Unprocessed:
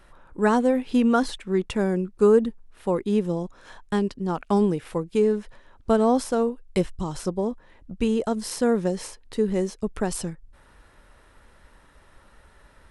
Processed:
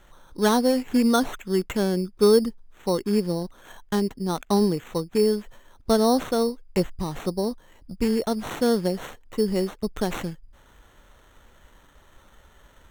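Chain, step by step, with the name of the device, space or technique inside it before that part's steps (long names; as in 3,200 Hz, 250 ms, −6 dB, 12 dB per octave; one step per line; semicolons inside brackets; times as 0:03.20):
crushed at another speed (tape speed factor 0.5×; decimation without filtering 18×; tape speed factor 2×)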